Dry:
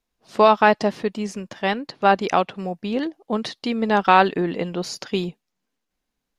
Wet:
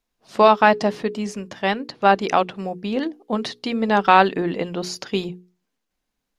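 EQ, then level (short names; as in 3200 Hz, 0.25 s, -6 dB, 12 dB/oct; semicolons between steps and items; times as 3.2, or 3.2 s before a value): notches 60/120/180/240/300/360/420/480 Hz; +1.0 dB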